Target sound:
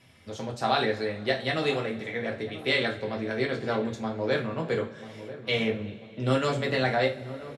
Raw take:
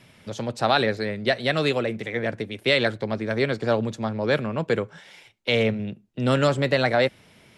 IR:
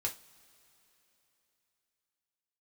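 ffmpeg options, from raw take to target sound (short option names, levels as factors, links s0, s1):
-filter_complex "[0:a]asplit=2[s0][s1];[s1]adelay=990,lowpass=f=910:p=1,volume=0.224,asplit=2[s2][s3];[s3]adelay=990,lowpass=f=910:p=1,volume=0.53,asplit=2[s4][s5];[s5]adelay=990,lowpass=f=910:p=1,volume=0.53,asplit=2[s6][s7];[s7]adelay=990,lowpass=f=910:p=1,volume=0.53,asplit=2[s8][s9];[s9]adelay=990,lowpass=f=910:p=1,volume=0.53[s10];[s0][s2][s4][s6][s8][s10]amix=inputs=6:normalize=0[s11];[1:a]atrim=start_sample=2205,asetrate=36603,aresample=44100[s12];[s11][s12]afir=irnorm=-1:irlink=0,volume=0.447"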